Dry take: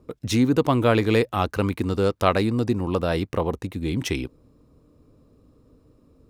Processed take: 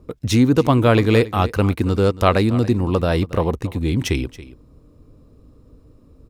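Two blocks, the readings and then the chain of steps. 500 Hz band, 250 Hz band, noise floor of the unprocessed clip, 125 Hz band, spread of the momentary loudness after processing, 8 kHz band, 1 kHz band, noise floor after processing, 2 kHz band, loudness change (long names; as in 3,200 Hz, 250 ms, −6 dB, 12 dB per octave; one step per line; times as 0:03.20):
+4.0 dB, +4.5 dB, −59 dBFS, +7.0 dB, 8 LU, +3.5 dB, +3.5 dB, −51 dBFS, +3.5 dB, +5.0 dB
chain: low-shelf EQ 83 Hz +10 dB
single-tap delay 278 ms −17.5 dB
level +3.5 dB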